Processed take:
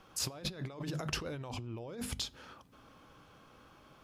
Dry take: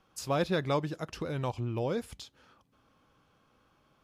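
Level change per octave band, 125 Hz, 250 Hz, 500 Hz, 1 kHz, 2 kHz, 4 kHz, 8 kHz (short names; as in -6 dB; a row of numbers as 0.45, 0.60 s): -6.5, -7.5, -12.5, -11.0, -5.0, +3.0, +6.0 dB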